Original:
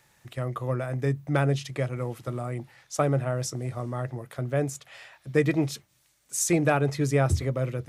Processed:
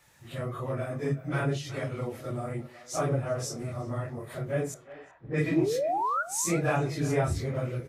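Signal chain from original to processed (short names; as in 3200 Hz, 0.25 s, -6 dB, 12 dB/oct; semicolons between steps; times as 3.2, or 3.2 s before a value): phase scrambler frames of 0.1 s; 4.74–5.53 low-pass opened by the level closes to 1000 Hz, open at -19.5 dBFS; in parallel at 0 dB: compressor, threshold -37 dBFS, peak gain reduction 18 dB; 5.51–6.23 on the sum: painted sound rise 280–1500 Hz -23 dBFS; speakerphone echo 0.37 s, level -15 dB; on a send at -13 dB: reverb RT60 0.30 s, pre-delay 3 ms; on the sum: gain -5 dB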